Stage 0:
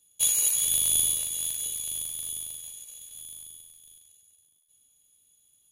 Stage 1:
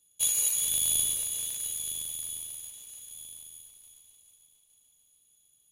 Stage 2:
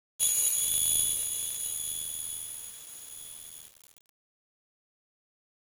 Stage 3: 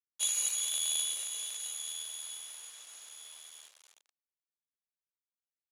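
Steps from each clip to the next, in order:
echo machine with several playback heads 147 ms, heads first and third, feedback 68%, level −12 dB; level −3 dB
bit-depth reduction 8 bits, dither none
band-pass filter 660–7,700 Hz

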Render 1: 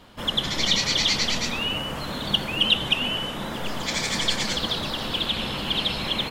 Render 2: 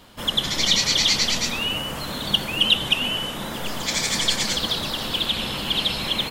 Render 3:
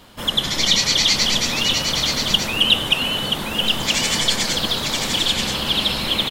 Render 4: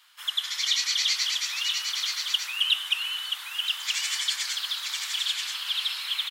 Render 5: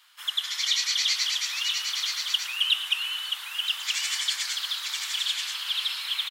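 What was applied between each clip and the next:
high-shelf EQ 5,600 Hz +9.5 dB
single-tap delay 979 ms −4.5 dB; level +2.5 dB
inverse Chebyshev high-pass filter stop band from 210 Hz, stop band 80 dB; level −8 dB
echo with shifted repeats 112 ms, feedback 52%, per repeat −58 Hz, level −16 dB

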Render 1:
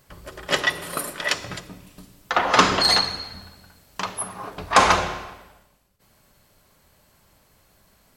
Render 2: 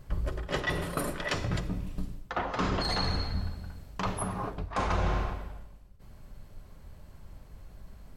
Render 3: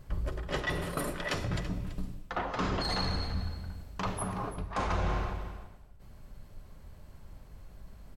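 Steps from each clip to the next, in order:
spectral tilt −2.5 dB per octave; reversed playback; downward compressor 8 to 1, threshold −28 dBFS, peak gain reduction 18.5 dB; reversed playback; low-shelf EQ 80 Hz +9 dB
single-tap delay 333 ms −15 dB; in parallel at −8 dB: soft clipping −28.5 dBFS, distortion −11 dB; on the sum: level −4 dB

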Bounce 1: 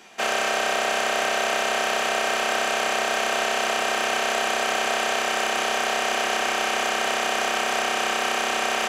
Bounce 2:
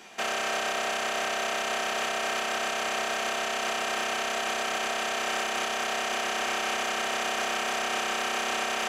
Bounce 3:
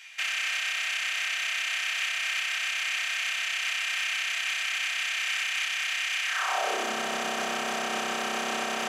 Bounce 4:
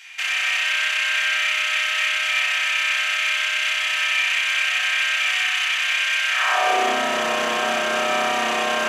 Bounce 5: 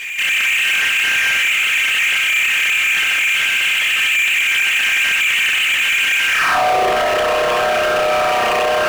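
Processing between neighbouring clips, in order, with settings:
brickwall limiter −19 dBFS, peak gain reduction 10 dB
high-pass filter sweep 2,200 Hz → 180 Hz, 0:06.26–0:06.97; level −1.5 dB
spring reverb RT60 2.2 s, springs 39 ms, chirp 65 ms, DRR −3.5 dB; level +4 dB
spectral envelope exaggerated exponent 2; power curve on the samples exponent 0.5

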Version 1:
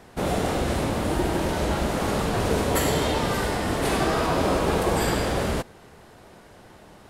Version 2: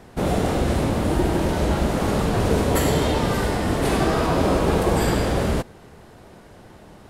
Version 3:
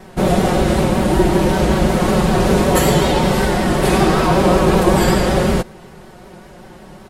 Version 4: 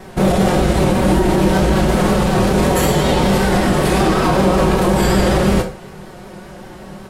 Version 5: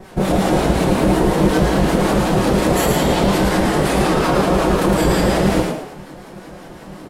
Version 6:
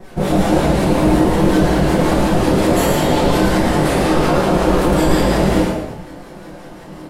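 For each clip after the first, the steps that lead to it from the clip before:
low-shelf EQ 470 Hz +5.5 dB
comb filter 5.4 ms, depth 69%; pitch vibrato 5.3 Hz 50 cents; level +5 dB
brickwall limiter −10 dBFS, peak gain reduction 8 dB; convolution reverb RT60 0.35 s, pre-delay 12 ms, DRR 6 dB; level +3 dB
two-band tremolo in antiphase 5.5 Hz, depth 70%, crossover 860 Hz; echo with shifted repeats 110 ms, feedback 33%, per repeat +120 Hz, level −3.5 dB
rectangular room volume 120 cubic metres, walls mixed, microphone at 0.8 metres; level −2.5 dB

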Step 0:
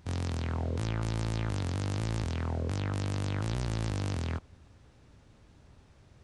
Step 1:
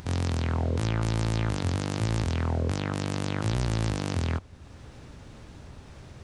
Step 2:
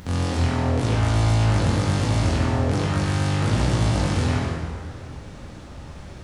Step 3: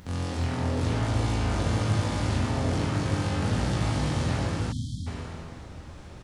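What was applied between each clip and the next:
mains-hum notches 50/100 Hz; in parallel at −1 dB: upward compression, threshold −35 dBFS
dense smooth reverb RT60 2.2 s, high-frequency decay 0.7×, DRR −6.5 dB
bouncing-ball delay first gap 430 ms, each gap 0.65×, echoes 5; time-frequency box erased 0:04.72–0:05.07, 290–3,100 Hz; level −7 dB

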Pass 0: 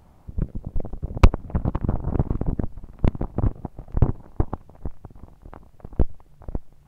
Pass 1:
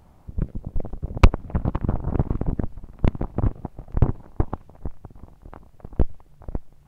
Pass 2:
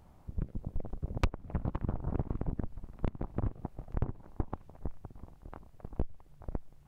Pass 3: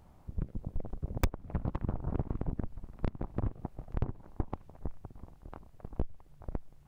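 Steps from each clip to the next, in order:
dynamic equaliser 2,400 Hz, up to +3 dB, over −49 dBFS, Q 0.73
downward compressor 3 to 1, threshold −24 dBFS, peak gain reduction 13 dB; level −5.5 dB
stylus tracing distortion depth 0.44 ms

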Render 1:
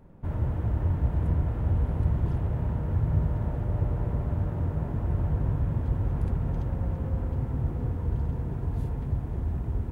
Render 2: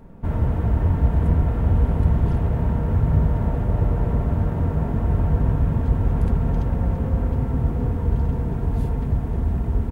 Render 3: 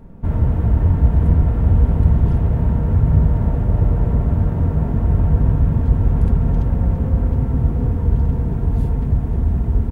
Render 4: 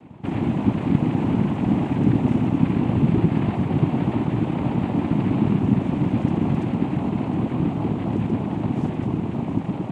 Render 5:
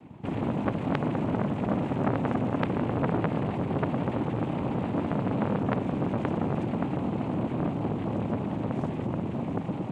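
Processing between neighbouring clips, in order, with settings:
comb filter 4.4 ms, depth 32%; level +8 dB
low-shelf EQ 320 Hz +6 dB; level −1 dB
cochlear-implant simulation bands 4
saturating transformer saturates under 1,300 Hz; level −3.5 dB

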